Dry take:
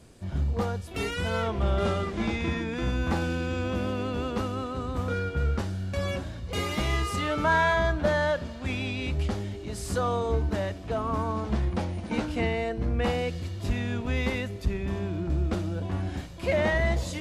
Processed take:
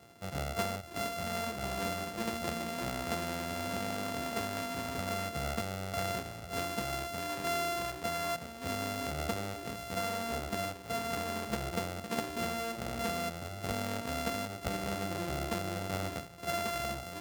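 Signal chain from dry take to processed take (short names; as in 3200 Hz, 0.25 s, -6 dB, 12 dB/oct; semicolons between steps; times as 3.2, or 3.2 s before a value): sample sorter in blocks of 64 samples; HPF 130 Hz 12 dB/oct; vocal rider within 4 dB 0.5 s; gain -6.5 dB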